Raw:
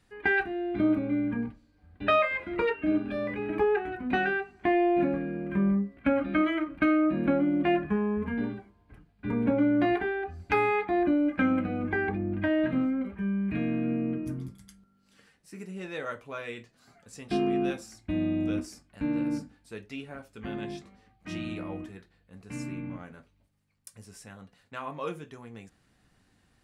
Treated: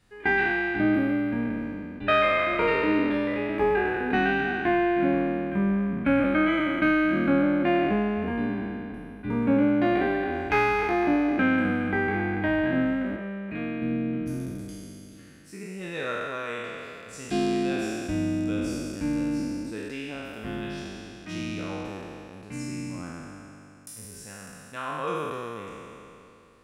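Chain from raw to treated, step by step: spectral trails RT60 2.87 s; 8.52–9.41 notch 7500 Hz, Q 9.5; 13.16–13.82 tone controls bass -10 dB, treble -5 dB

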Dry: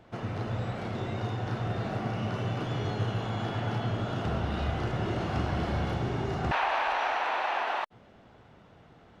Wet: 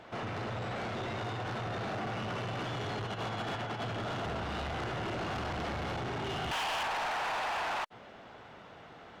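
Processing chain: 3.07–3.84 negative-ratio compressor -33 dBFS, ratio -0.5; 6.24–6.83 bell 3100 Hz +13.5 dB 0.34 oct; soft clip -32 dBFS, distortion -9 dB; overdrive pedal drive 13 dB, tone 5700 Hz, clips at -32 dBFS; gain +1 dB

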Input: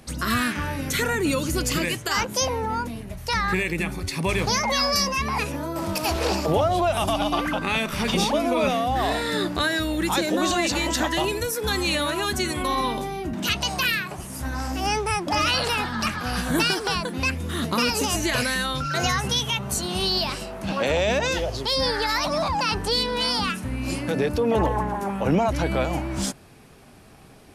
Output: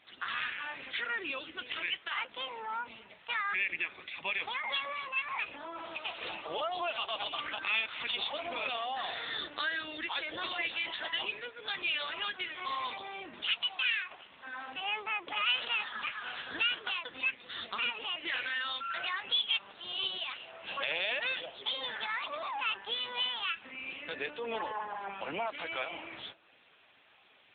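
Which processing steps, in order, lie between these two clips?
HPF 190 Hz 12 dB/oct; differentiator; in parallel at +0.5 dB: compressor 12:1, threshold -41 dBFS, peak gain reduction 18.5 dB; on the sum: analogue delay 0.239 s, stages 2048, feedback 48%, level -22.5 dB; gain +3.5 dB; AMR-NB 6.7 kbps 8000 Hz

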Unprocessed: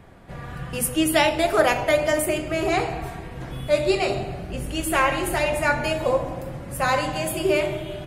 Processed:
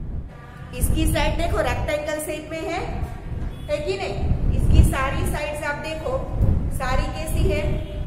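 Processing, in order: wind noise 91 Hz -18 dBFS; added harmonics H 6 -29 dB, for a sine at 3.5 dBFS; gain -4.5 dB

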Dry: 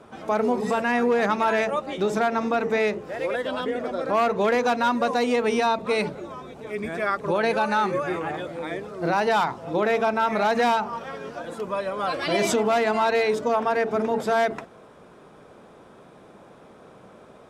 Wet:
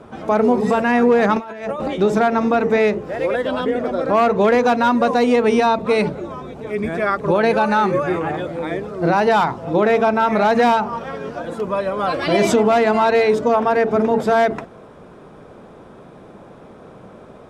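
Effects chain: tilt -1.5 dB/oct; 1.36–1.88 negative-ratio compressor -29 dBFS, ratio -0.5; gain +5.5 dB

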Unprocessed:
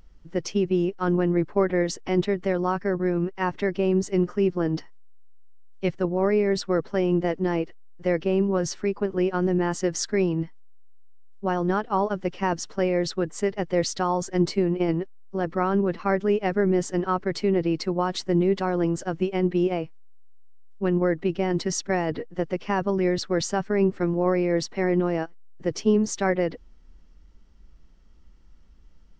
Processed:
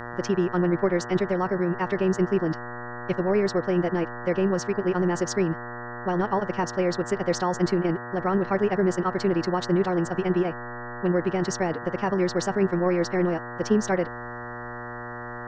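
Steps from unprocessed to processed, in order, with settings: buzz 120 Hz, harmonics 16, -36 dBFS -1 dB/oct; time stretch by phase-locked vocoder 0.53×

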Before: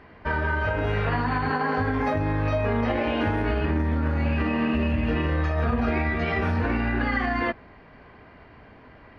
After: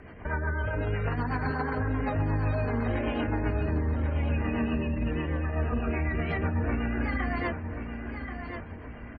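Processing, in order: low shelf 150 Hz +4.5 dB; spectral gate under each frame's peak -30 dB strong; limiter -23.5 dBFS, peak gain reduction 12.5 dB; rotary speaker horn 8 Hz; feedback echo 1.082 s, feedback 39%, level -8 dB; gain +3.5 dB

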